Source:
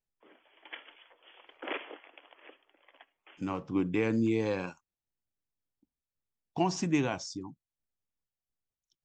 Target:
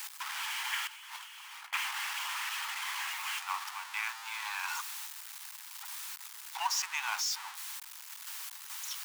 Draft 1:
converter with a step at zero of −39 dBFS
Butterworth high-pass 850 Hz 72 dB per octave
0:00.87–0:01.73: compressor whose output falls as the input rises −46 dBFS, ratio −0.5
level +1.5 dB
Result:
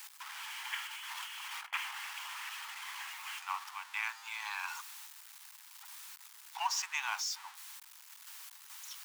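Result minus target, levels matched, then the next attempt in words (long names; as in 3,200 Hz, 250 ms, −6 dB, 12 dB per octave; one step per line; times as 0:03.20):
converter with a step at zero: distortion −6 dB
converter with a step at zero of −31.5 dBFS
Butterworth high-pass 850 Hz 72 dB per octave
0:00.87–0:01.73: compressor whose output falls as the input rises −46 dBFS, ratio −0.5
level +1.5 dB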